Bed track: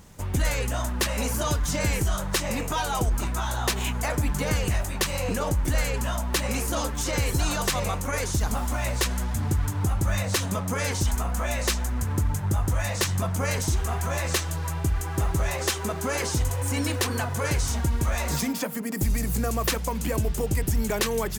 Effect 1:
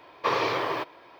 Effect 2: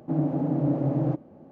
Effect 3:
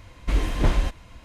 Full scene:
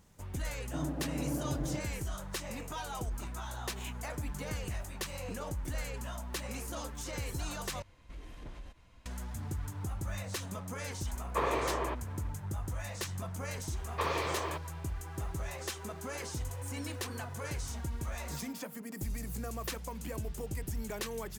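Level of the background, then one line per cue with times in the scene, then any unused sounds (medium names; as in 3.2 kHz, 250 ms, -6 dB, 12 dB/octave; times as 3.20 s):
bed track -13 dB
0.64 s: add 2 -11.5 dB
7.82 s: replace with 3 -14 dB + compression 2.5:1, threshold -34 dBFS
11.11 s: add 1 -3.5 dB + tape spacing loss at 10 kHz 27 dB
13.74 s: add 1 -8 dB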